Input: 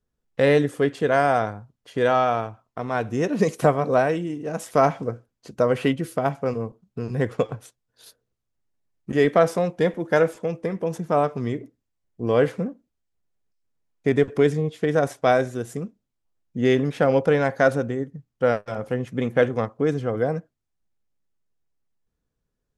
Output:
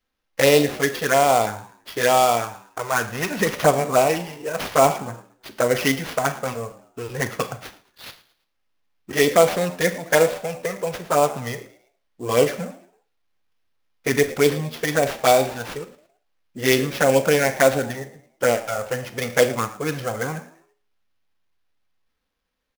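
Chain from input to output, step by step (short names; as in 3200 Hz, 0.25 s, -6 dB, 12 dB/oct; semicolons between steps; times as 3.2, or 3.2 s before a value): tilt shelf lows -7.5 dB, about 700 Hz; envelope flanger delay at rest 3.8 ms, full sweep at -15.5 dBFS; frequency-shifting echo 0.111 s, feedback 39%, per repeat +85 Hz, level -19 dB; Schroeder reverb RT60 0.38 s, combs from 30 ms, DRR 11 dB; sample-rate reducer 8100 Hz, jitter 20%; gain +5.5 dB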